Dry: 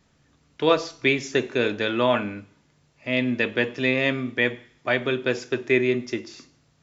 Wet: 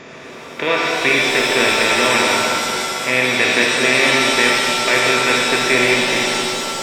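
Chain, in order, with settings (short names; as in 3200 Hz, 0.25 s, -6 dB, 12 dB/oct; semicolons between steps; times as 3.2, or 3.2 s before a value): per-bin compression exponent 0.4; dynamic EQ 2100 Hz, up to +8 dB, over -33 dBFS, Q 1; on a send: split-band echo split 610 Hz, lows 0.219 s, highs 86 ms, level -8 dB; on the sum: shimmer reverb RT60 2.4 s, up +7 st, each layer -2 dB, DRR 1 dB; gain -5.5 dB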